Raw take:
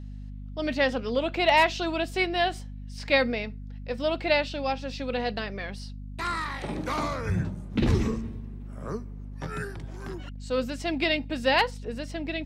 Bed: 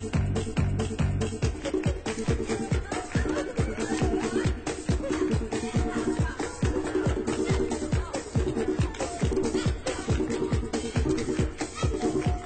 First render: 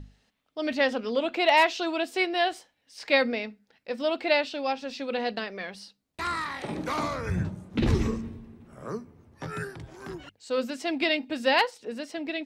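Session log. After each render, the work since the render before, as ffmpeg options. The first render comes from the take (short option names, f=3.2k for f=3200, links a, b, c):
-af "bandreject=f=50:t=h:w=6,bandreject=f=100:t=h:w=6,bandreject=f=150:t=h:w=6,bandreject=f=200:t=h:w=6,bandreject=f=250:t=h:w=6"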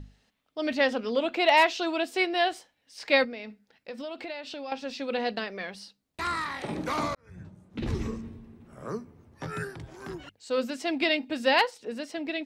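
-filter_complex "[0:a]asettb=1/sr,asplit=3[a][b][c];[a]atrim=end=3.244[d];[b]atrim=start=3.24:end=4.72,asetpts=PTS-STARTPTS,afade=t=in:d=0.004:c=qsin,afade=t=out:st=1.476:d=0.004:c=qsin,acompressor=threshold=-35dB:ratio=5:attack=3.2:release=140:knee=1:detection=peak[e];[c]atrim=start=4.716[f];[d][e]acrossfade=d=0.004:c1=hsin:c2=qsin[g];[g][f]acrossfade=d=0.004:c1=qsin:c2=hsin,asplit=2[h][i];[h]atrim=end=7.15,asetpts=PTS-STARTPTS,afade=t=out:st=7.146:d=0.004:c=hsin[j];[i]atrim=start=7.15,asetpts=PTS-STARTPTS,afade=t=in:d=1.7[k];[j][k]concat=n=2:v=0:a=1"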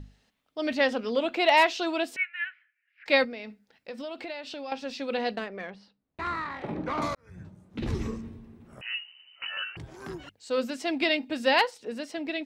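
-filter_complex "[0:a]asettb=1/sr,asplit=3[a][b][c];[a]atrim=end=2.164[d];[b]atrim=start=2.16:end=3.06,asetpts=PTS-STARTPTS,afade=t=in:d=0.004:c=qsin,afade=t=out:st=0.896:d=0.004:c=qsin,asuperpass=centerf=1900:order=8:qfactor=1.6[e];[c]atrim=start=3.056[f];[d][e]acrossfade=d=0.004:c1=hsin:c2=qsin[g];[g][f]acrossfade=d=0.004:c1=qsin:c2=hsin,asettb=1/sr,asplit=3[h][i][j];[h]atrim=end=5.364[k];[i]atrim=start=5.36:end=7.02,asetpts=PTS-STARTPTS,afade=t=in:d=0.004:c=qsin,afade=t=out:st=1.656:d=0.004:c=qsin,adynamicsmooth=sensitivity=1:basefreq=2.2k[l];[j]atrim=start=7.016[m];[k][l]acrossfade=d=0.004:c1=hsin:c2=qsin[n];[n][m]acrossfade=d=0.004:c1=qsin:c2=hsin,asettb=1/sr,asplit=3[o][p][q];[o]atrim=end=8.814[r];[p]atrim=start=8.81:end=9.77,asetpts=PTS-STARTPTS,afade=t=in:d=0.004:c=qsin,afade=t=out:st=0.956:d=0.004:c=qsin,lowpass=f=2.6k:t=q:w=0.5098,lowpass=f=2.6k:t=q:w=0.6013,lowpass=f=2.6k:t=q:w=0.9,lowpass=f=2.6k:t=q:w=2.563,afreqshift=-3100[s];[q]atrim=start=9.766[t];[r][s]acrossfade=d=0.004:c1=hsin:c2=qsin[u];[u][t]acrossfade=d=0.004:c1=qsin:c2=hsin"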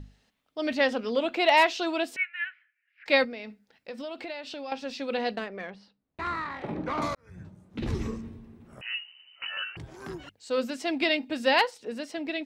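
-af anull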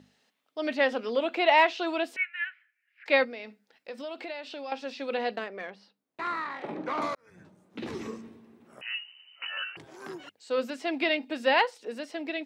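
-filter_complex "[0:a]acrossover=split=3800[a][b];[b]acompressor=threshold=-51dB:ratio=4:attack=1:release=60[c];[a][c]amix=inputs=2:normalize=0,highpass=280"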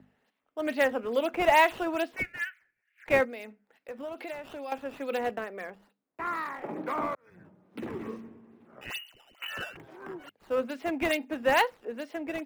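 -filter_complex "[0:a]adynamicsmooth=sensitivity=4.5:basefreq=4.6k,acrossover=split=110|1200|2700[a][b][c][d];[d]acrusher=samples=12:mix=1:aa=0.000001:lfo=1:lforange=19.2:lforate=2.3[e];[a][b][c][e]amix=inputs=4:normalize=0"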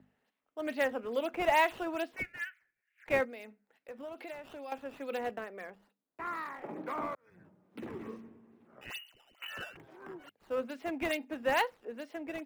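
-af "volume=-5.5dB"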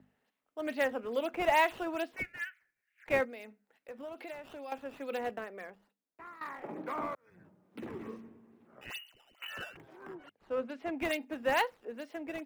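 -filter_complex "[0:a]asettb=1/sr,asplit=3[a][b][c];[a]atrim=end=10.154[d];[b]atrim=start=10.15:end=10.98,asetpts=PTS-STARTPTS,afade=t=in:d=0.004:c=qsin,afade=t=out:st=0.826:d=0.004:c=qsin,aemphasis=mode=reproduction:type=50kf[e];[c]atrim=start=10.976[f];[d][e]acrossfade=d=0.004:c1=hsin:c2=qsin[g];[g][f]acrossfade=d=0.004:c1=qsin:c2=hsin,asplit=2[h][i];[h]atrim=end=6.41,asetpts=PTS-STARTPTS,afade=t=out:st=5.55:d=0.86:silence=0.158489[j];[i]atrim=start=6.41,asetpts=PTS-STARTPTS,afade=t=in:d=0.004:c=hsin:silence=0.158489[k];[j][k]concat=n=2:v=0:a=1"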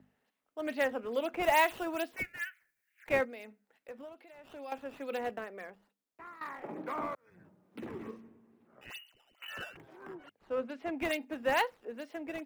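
-filter_complex "[0:a]asettb=1/sr,asplit=3[a][b][c];[a]atrim=end=1.434[d];[b]atrim=start=1.43:end=3.1,asetpts=PTS-STARTPTS,afade=t=in:d=0.004:c=qsin,afade=t=out:st=1.666:d=0.004:c=qsin,highshelf=f=7.6k:g=10[e];[c]atrim=start=3.096[f];[d][e]acrossfade=d=0.004:c1=hsin:c2=qsin[g];[g][f]acrossfade=d=0.004:c1=qsin:c2=hsin,asplit=5[h][i][j][k][l];[h]atrim=end=4.22,asetpts=PTS-STARTPTS,afade=t=out:st=3.92:d=0.3:silence=0.251189[m];[i]atrim=start=4.22:end=4.32,asetpts=PTS-STARTPTS,volume=-12dB[n];[j]atrim=start=4.32:end=8.112,asetpts=PTS-STARTPTS,afade=t=in:d=0.3:silence=0.251189[o];[k]atrim=start=8.108:end=9.482,asetpts=PTS-STARTPTS,volume=-3.5dB[p];[l]atrim=start=9.478[q];[m][n][o]concat=n=3:v=0:a=1[r];[r][p]acrossfade=d=0.004:c1=hsin:c2=hsin[s];[s][q]acrossfade=d=0.004:c1=hsin:c2=hsin"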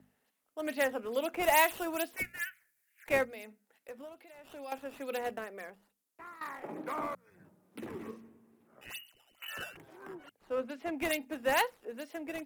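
-af "equalizer=f=12k:w=0.49:g=10.5,bandreject=f=60:t=h:w=6,bandreject=f=120:t=h:w=6,bandreject=f=180:t=h:w=6,bandreject=f=240:t=h:w=6"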